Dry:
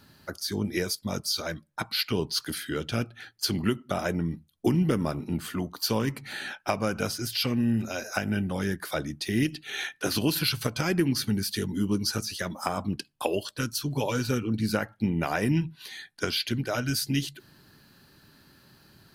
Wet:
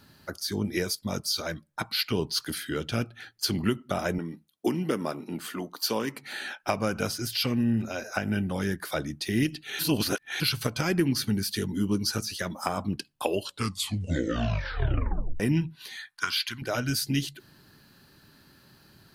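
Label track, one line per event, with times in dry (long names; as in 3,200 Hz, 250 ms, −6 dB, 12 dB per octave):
4.180000	6.630000	high-pass filter 260 Hz
7.630000	8.250000	high-shelf EQ 4,300 Hz −7 dB
9.790000	10.400000	reverse
13.370000	13.370000	tape stop 2.03 s
15.960000	16.620000	low shelf with overshoot 750 Hz −12 dB, Q 3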